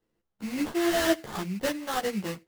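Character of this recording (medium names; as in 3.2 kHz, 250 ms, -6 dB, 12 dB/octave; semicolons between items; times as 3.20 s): aliases and images of a low sample rate 2.4 kHz, jitter 20%; a shimmering, thickened sound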